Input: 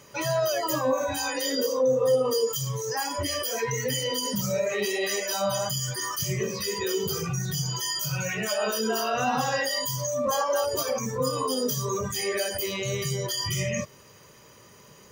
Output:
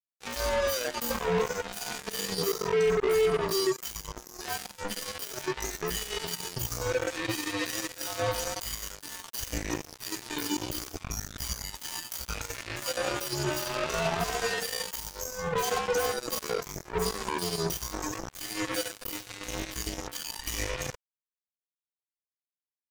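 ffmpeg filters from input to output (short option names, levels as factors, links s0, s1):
-af "afreqshift=-81,atempo=0.66,acrusher=bits=3:mix=0:aa=0.5,volume=0.668"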